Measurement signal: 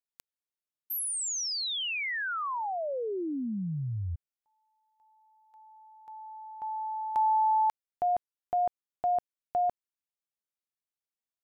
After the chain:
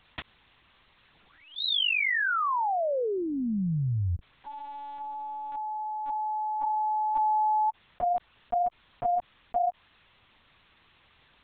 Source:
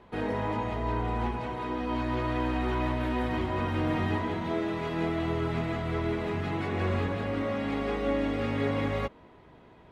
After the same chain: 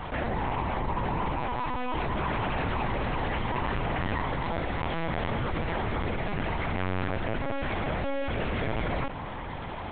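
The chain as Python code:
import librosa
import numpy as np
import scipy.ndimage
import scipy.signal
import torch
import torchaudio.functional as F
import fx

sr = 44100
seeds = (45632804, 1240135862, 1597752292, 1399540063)

y = fx.peak_eq(x, sr, hz=310.0, db=-13.0, octaves=0.71)
y = fx.lpc_vocoder(y, sr, seeds[0], excitation='pitch_kept', order=8)
y = fx.env_flatten(y, sr, amount_pct=70)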